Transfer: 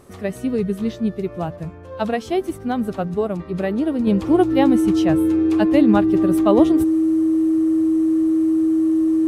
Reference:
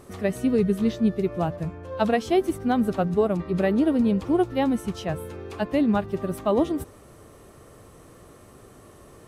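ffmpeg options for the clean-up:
-af "bandreject=f=320:w=30,asetnsamples=n=441:p=0,asendcmd='4.07 volume volume -5.5dB',volume=1"

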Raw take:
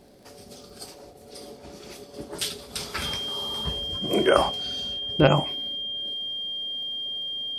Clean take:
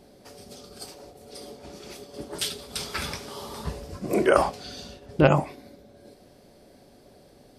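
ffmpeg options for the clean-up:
-af "adeclick=t=4,bandreject=f=3200:w=30"

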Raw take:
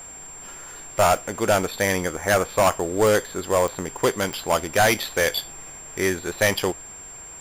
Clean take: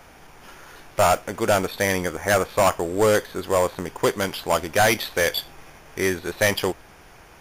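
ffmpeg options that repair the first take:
-af "adeclick=t=4,bandreject=f=7400:w=30"

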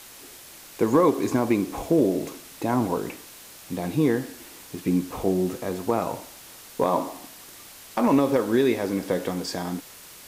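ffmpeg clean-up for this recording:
-af "afftdn=nr=23:nf=-46"

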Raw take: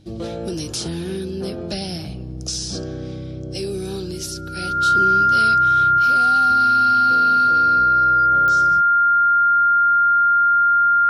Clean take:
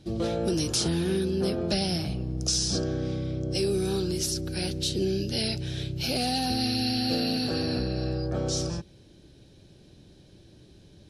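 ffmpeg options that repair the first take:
-af "adeclick=t=4,bandreject=f=101.2:t=h:w=4,bandreject=f=202.4:t=h:w=4,bandreject=f=303.6:t=h:w=4,bandreject=f=1400:w=30,asetnsamples=n=441:p=0,asendcmd='5.99 volume volume 5dB',volume=1"

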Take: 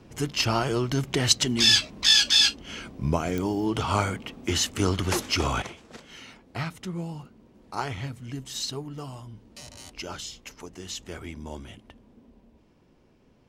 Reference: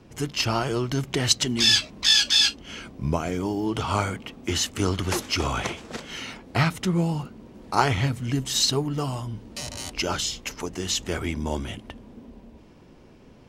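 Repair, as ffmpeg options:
-af "adeclick=t=4,asetnsamples=n=441:p=0,asendcmd='5.62 volume volume 10dB',volume=1"

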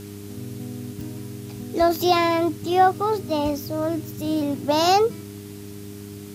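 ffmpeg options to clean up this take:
-af "adeclick=t=4,bandreject=f=101.3:t=h:w=4,bandreject=f=202.6:t=h:w=4,bandreject=f=303.9:t=h:w=4,bandreject=f=405.2:t=h:w=4,afwtdn=0.0045"

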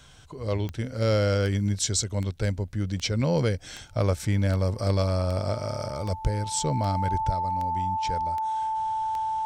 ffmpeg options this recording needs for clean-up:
-af "adeclick=t=4,bandreject=f=880:w=30"

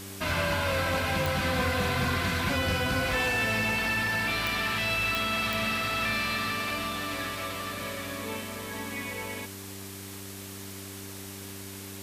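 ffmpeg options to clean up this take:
-af "adeclick=t=4,bandreject=f=97.8:t=h:w=4,bandreject=f=195.6:t=h:w=4,bandreject=f=293.4:t=h:w=4,bandreject=f=391.2:t=h:w=4,bandreject=f=8000:w=30,afwtdn=0.0071"

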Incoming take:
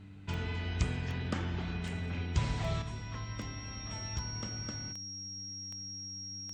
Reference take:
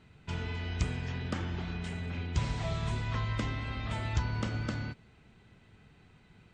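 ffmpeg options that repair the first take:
-af "adeclick=t=4,bandreject=f=97.7:t=h:w=4,bandreject=f=195.4:t=h:w=4,bandreject=f=293.1:t=h:w=4,bandreject=f=5600:w=30,asetnsamples=n=441:p=0,asendcmd='2.82 volume volume 8dB',volume=1"

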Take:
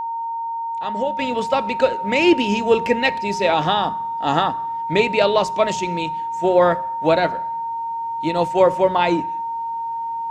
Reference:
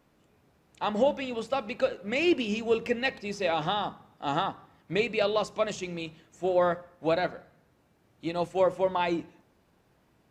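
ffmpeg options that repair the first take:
-af "bandreject=f=920:w=30,asetnsamples=n=441:p=0,asendcmd='1.19 volume volume -9.5dB',volume=1"

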